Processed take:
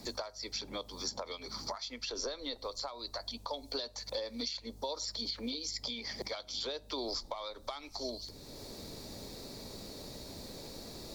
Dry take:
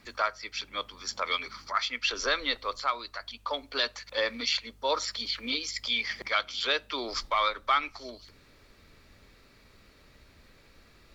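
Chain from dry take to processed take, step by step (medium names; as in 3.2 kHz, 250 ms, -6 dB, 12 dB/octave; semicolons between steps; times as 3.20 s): compression 10:1, threshold -35 dBFS, peak gain reduction 15 dB; high-order bell 1.9 kHz -15 dB; three bands compressed up and down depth 70%; trim +4 dB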